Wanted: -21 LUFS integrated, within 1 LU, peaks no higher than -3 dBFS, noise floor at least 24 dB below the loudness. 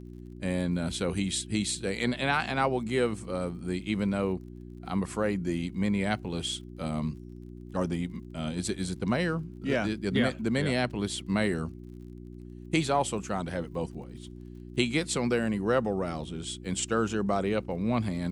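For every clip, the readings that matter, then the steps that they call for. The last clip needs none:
tick rate 40 per s; hum 60 Hz; highest harmonic 360 Hz; hum level -41 dBFS; loudness -30.0 LUFS; peak level -12.5 dBFS; loudness target -21.0 LUFS
-> de-click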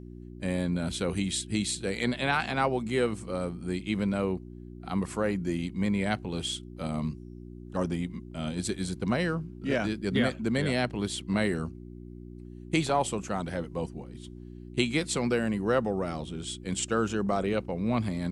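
tick rate 0.11 per s; hum 60 Hz; highest harmonic 360 Hz; hum level -41 dBFS
-> de-hum 60 Hz, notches 6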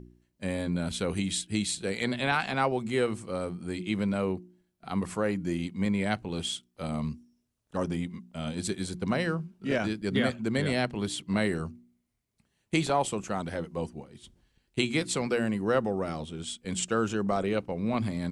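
hum not found; loudness -30.5 LUFS; peak level -13.0 dBFS; loudness target -21.0 LUFS
-> trim +9.5 dB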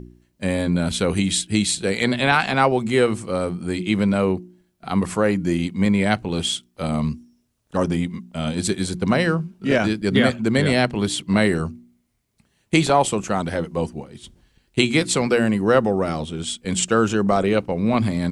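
loudness -21.0 LUFS; peak level -3.5 dBFS; noise floor -67 dBFS

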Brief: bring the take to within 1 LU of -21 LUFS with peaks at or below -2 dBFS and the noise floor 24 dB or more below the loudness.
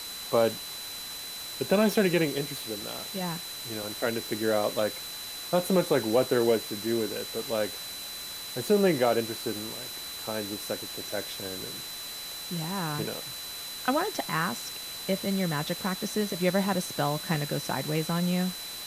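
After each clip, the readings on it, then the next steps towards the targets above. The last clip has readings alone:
steady tone 4 kHz; tone level -39 dBFS; noise floor -39 dBFS; noise floor target -54 dBFS; loudness -29.5 LUFS; peak level -12.0 dBFS; loudness target -21.0 LUFS
-> band-stop 4 kHz, Q 30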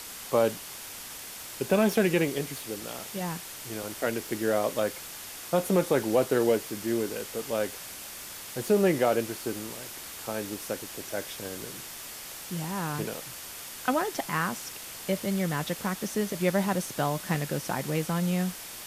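steady tone not found; noise floor -42 dBFS; noise floor target -54 dBFS
-> noise reduction 12 dB, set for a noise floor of -42 dBFS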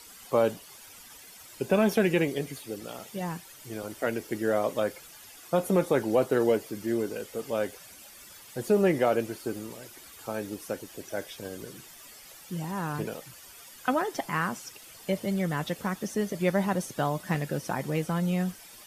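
noise floor -50 dBFS; noise floor target -54 dBFS
-> noise reduction 6 dB, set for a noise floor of -50 dBFS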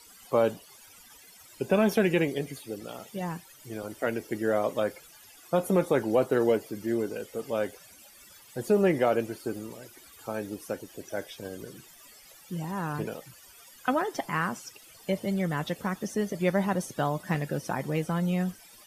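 noise floor -53 dBFS; noise floor target -54 dBFS
-> noise reduction 6 dB, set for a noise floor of -53 dBFS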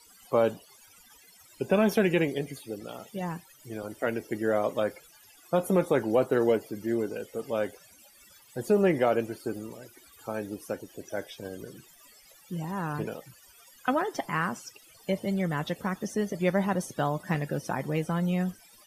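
noise floor -57 dBFS; loudness -29.5 LUFS; peak level -12.5 dBFS; loudness target -21.0 LUFS
-> trim +8.5 dB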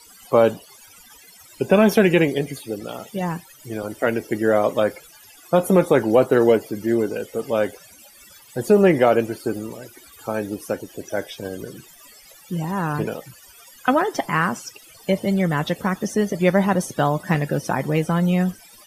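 loudness -21.0 LUFS; peak level -4.0 dBFS; noise floor -48 dBFS

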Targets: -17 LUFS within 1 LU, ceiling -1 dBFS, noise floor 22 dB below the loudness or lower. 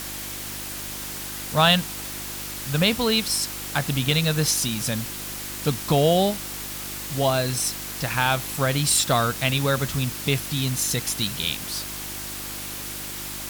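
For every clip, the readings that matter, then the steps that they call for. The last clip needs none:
hum 50 Hz; highest harmonic 350 Hz; hum level -40 dBFS; noise floor -34 dBFS; noise floor target -46 dBFS; loudness -24.0 LUFS; peak level -4.0 dBFS; loudness target -17.0 LUFS
-> de-hum 50 Hz, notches 7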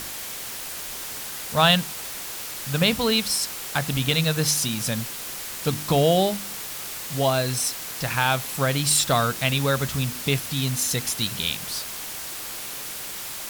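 hum not found; noise floor -34 dBFS; noise floor target -46 dBFS
-> noise reduction 12 dB, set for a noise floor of -34 dBFS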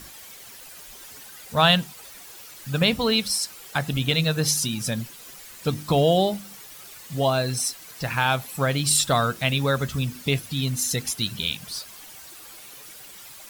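noise floor -44 dBFS; noise floor target -46 dBFS
-> noise reduction 6 dB, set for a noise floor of -44 dBFS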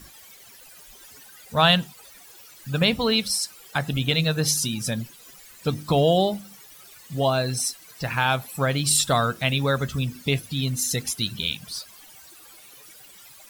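noise floor -48 dBFS; loudness -23.5 LUFS; peak level -4.0 dBFS; loudness target -17.0 LUFS
-> trim +6.5 dB; peak limiter -1 dBFS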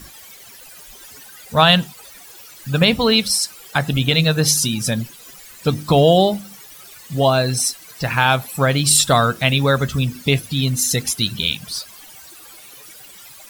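loudness -17.0 LUFS; peak level -1.0 dBFS; noise floor -42 dBFS

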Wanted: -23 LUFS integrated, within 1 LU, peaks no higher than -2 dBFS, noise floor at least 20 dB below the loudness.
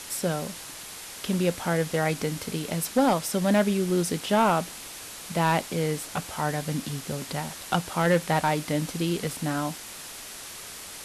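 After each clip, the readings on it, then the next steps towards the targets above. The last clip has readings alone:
clipped samples 0.3%; clipping level -14.5 dBFS; noise floor -41 dBFS; noise floor target -47 dBFS; loudness -27.0 LUFS; peak level -14.5 dBFS; loudness target -23.0 LUFS
-> clip repair -14.5 dBFS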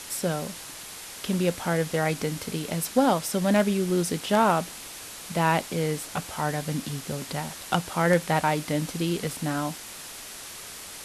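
clipped samples 0.0%; noise floor -41 dBFS; noise floor target -47 dBFS
-> noise reduction 6 dB, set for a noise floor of -41 dBFS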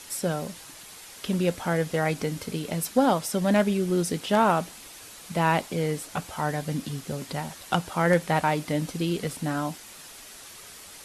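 noise floor -46 dBFS; noise floor target -47 dBFS
-> noise reduction 6 dB, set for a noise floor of -46 dBFS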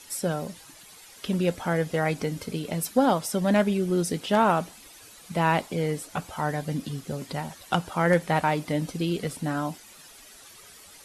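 noise floor -50 dBFS; loudness -26.5 LUFS; peak level -8.5 dBFS; loudness target -23.0 LUFS
-> trim +3.5 dB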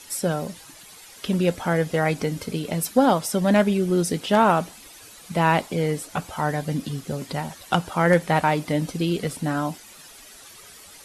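loudness -23.0 LUFS; peak level -5.0 dBFS; noise floor -46 dBFS

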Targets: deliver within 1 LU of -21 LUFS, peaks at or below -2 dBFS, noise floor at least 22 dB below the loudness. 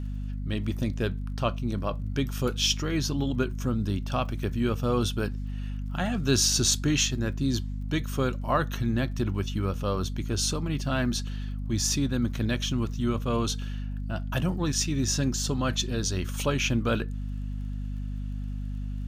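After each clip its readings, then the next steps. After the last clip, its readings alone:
tick rate 27 per s; hum 50 Hz; highest harmonic 250 Hz; hum level -30 dBFS; loudness -28.5 LUFS; peak level -10.0 dBFS; loudness target -21.0 LUFS
-> de-click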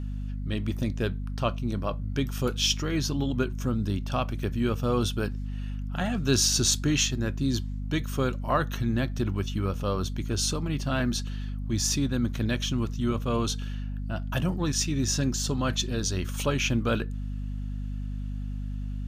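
tick rate 0.10 per s; hum 50 Hz; highest harmonic 250 Hz; hum level -30 dBFS
-> de-hum 50 Hz, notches 5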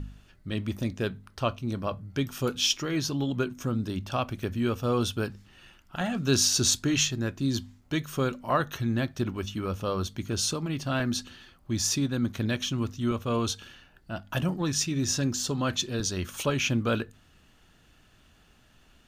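hum not found; loudness -28.5 LUFS; peak level -10.0 dBFS; loudness target -21.0 LUFS
-> trim +7.5 dB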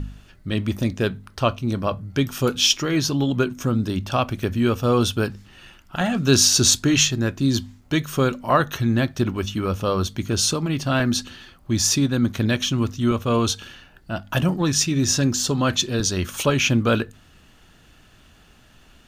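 loudness -21.0 LUFS; peak level -2.5 dBFS; noise floor -53 dBFS

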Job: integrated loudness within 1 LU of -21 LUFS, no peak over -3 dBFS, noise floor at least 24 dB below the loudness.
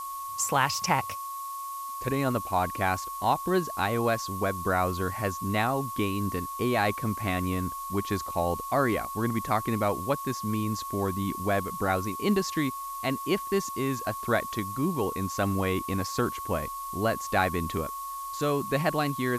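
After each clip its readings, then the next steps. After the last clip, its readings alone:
steady tone 1.1 kHz; tone level -34 dBFS; noise floor -37 dBFS; noise floor target -53 dBFS; loudness -29.0 LUFS; peak level -9.0 dBFS; loudness target -21.0 LUFS
-> band-stop 1.1 kHz, Q 30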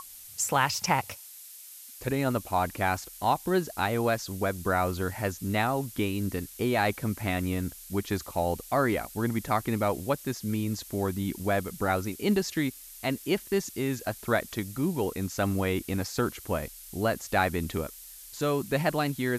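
steady tone not found; noise floor -47 dBFS; noise floor target -54 dBFS
-> noise print and reduce 7 dB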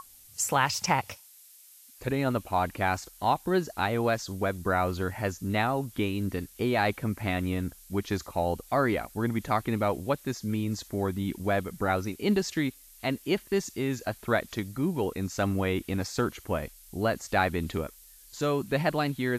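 noise floor -54 dBFS; loudness -29.5 LUFS; peak level -9.5 dBFS; loudness target -21.0 LUFS
-> trim +8.5 dB; peak limiter -3 dBFS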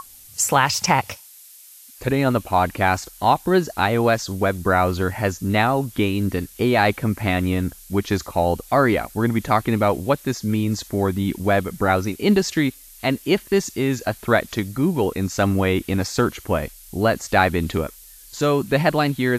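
loudness -21.0 LUFS; peak level -3.0 dBFS; noise floor -45 dBFS

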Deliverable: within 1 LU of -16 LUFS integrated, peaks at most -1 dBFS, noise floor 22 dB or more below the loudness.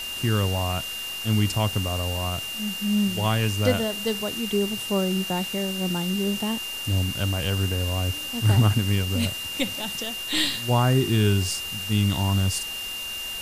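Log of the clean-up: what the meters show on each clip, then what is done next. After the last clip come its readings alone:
steady tone 2.8 kHz; tone level -31 dBFS; noise floor -33 dBFS; noise floor target -47 dBFS; loudness -24.5 LUFS; peak level -7.5 dBFS; loudness target -16.0 LUFS
-> band-stop 2.8 kHz, Q 30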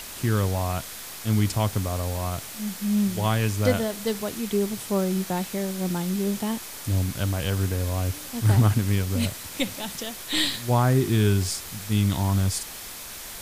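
steady tone not found; noise floor -39 dBFS; noise floor target -48 dBFS
-> noise print and reduce 9 dB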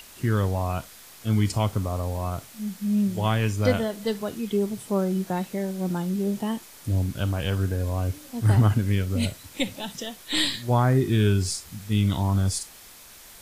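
noise floor -47 dBFS; noise floor target -48 dBFS
-> noise print and reduce 6 dB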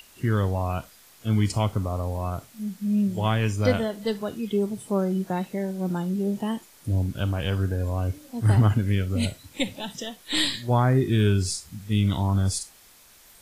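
noise floor -53 dBFS; loudness -25.5 LUFS; peak level -7.5 dBFS; loudness target -16.0 LUFS
-> trim +9.5 dB; peak limiter -1 dBFS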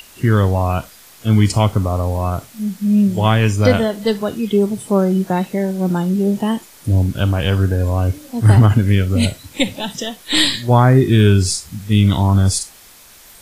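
loudness -16.5 LUFS; peak level -1.0 dBFS; noise floor -44 dBFS

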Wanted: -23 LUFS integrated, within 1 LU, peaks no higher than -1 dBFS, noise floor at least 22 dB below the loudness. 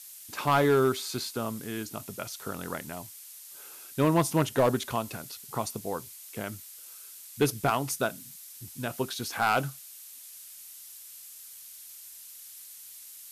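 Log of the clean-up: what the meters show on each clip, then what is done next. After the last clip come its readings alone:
clipped samples 0.4%; clipping level -16.5 dBFS; noise floor -47 dBFS; noise floor target -52 dBFS; loudness -29.5 LUFS; peak level -16.5 dBFS; loudness target -23.0 LUFS
-> clip repair -16.5 dBFS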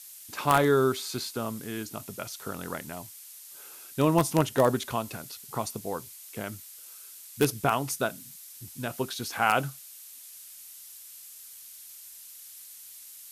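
clipped samples 0.0%; noise floor -47 dBFS; noise floor target -51 dBFS
-> noise reduction 6 dB, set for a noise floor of -47 dBFS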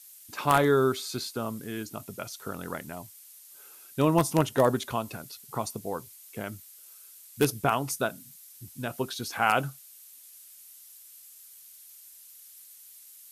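noise floor -51 dBFS; loudness -29.0 LUFS; peak level -7.5 dBFS; loudness target -23.0 LUFS
-> trim +6 dB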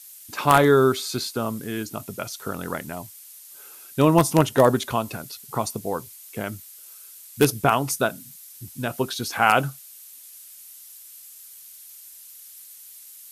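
loudness -23.0 LUFS; peak level -1.5 dBFS; noise floor -45 dBFS

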